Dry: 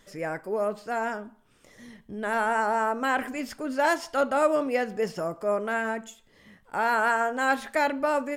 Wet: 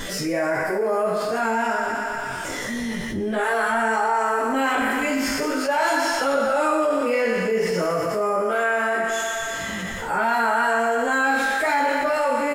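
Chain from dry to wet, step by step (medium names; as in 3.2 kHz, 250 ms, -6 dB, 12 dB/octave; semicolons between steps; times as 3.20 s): spectral sustain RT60 0.50 s; doubling 22 ms -4 dB; plain phase-vocoder stretch 1.5×; thinning echo 119 ms, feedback 68%, high-pass 420 Hz, level -8 dB; level flattener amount 70%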